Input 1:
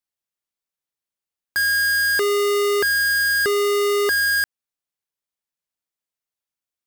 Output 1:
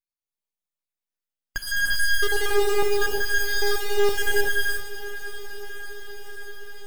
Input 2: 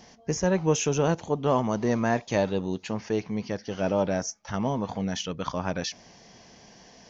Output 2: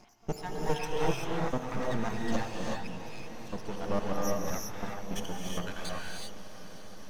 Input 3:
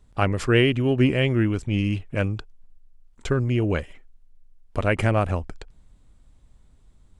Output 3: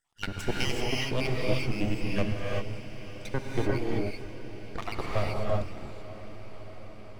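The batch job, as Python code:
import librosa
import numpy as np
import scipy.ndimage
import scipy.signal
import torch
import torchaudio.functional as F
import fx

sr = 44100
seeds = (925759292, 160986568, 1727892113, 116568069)

y = fx.spec_dropout(x, sr, seeds[0], share_pct=69)
y = np.maximum(y, 0.0)
y = fx.echo_diffused(y, sr, ms=602, feedback_pct=76, wet_db=-15.0)
y = fx.rev_gated(y, sr, seeds[1], gate_ms=410, shape='rising', drr_db=-2.5)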